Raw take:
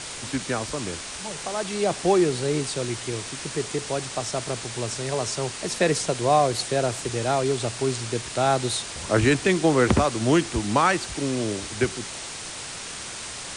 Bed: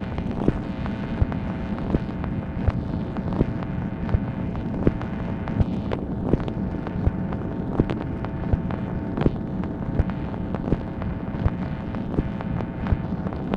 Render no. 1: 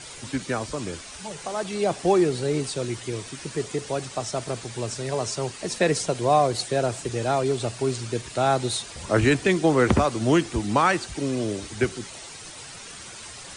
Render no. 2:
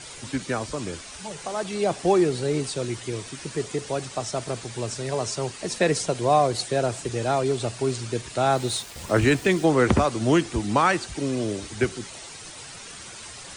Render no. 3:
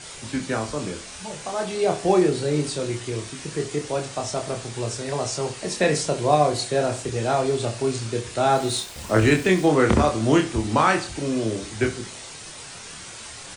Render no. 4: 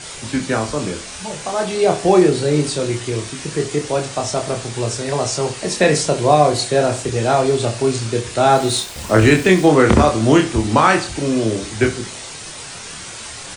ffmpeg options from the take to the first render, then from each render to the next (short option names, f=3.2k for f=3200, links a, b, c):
-af "afftdn=nr=9:nf=-36"
-filter_complex "[0:a]asettb=1/sr,asplit=3[a][b][c];[a]atrim=end=8.524[d];[b]atrim=start=8.52:end=9.65,asetpts=PTS-STARTPTS,afade=t=in:d=0.004:c=qsin,afade=t=out:st=1.126:d=0.004:c=qsin,aeval=exprs='val(0)*gte(abs(val(0)),0.0112)':c=same[e];[c]atrim=start=9.646[f];[d][e]acrossfade=d=0.004:c1=hsin:c2=qsin[g];[g][f]acrossfade=d=0.004:c1=qsin:c2=hsin"
-filter_complex "[0:a]asplit=2[a][b];[b]adelay=27,volume=-4dB[c];[a][c]amix=inputs=2:normalize=0,asplit=2[d][e];[e]adelay=66,lowpass=f=4.4k:p=1,volume=-13dB,asplit=2[f][g];[g]adelay=66,lowpass=f=4.4k:p=1,volume=0.33,asplit=2[h][i];[i]adelay=66,lowpass=f=4.4k:p=1,volume=0.33[j];[d][f][h][j]amix=inputs=4:normalize=0"
-af "volume=6.5dB,alimiter=limit=-1dB:level=0:latency=1"